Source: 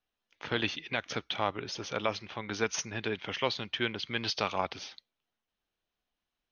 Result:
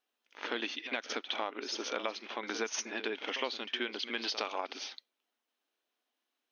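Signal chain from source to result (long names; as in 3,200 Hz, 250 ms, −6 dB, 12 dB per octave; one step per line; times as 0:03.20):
downward compressor 6 to 1, threshold −33 dBFS, peak gain reduction 10 dB
linear-phase brick-wall high-pass 220 Hz
on a send: backwards echo 62 ms −11.5 dB
on the sum: level +2 dB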